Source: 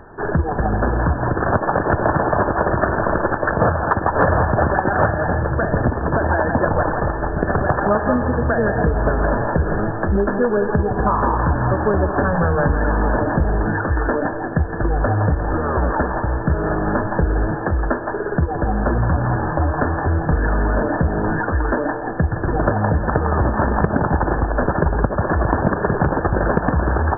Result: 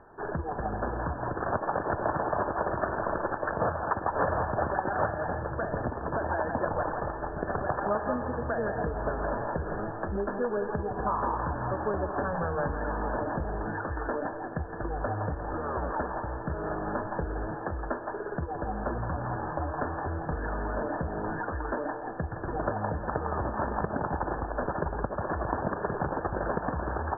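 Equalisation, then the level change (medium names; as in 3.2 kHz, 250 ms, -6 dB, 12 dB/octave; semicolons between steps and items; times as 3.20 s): low-pass 1.3 kHz 12 dB/octave; bass shelf 440 Hz -9.5 dB; -7.0 dB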